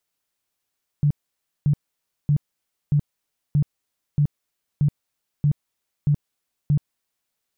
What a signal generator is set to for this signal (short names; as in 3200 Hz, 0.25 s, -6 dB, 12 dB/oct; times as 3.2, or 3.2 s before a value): tone bursts 146 Hz, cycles 11, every 0.63 s, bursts 10, -14.5 dBFS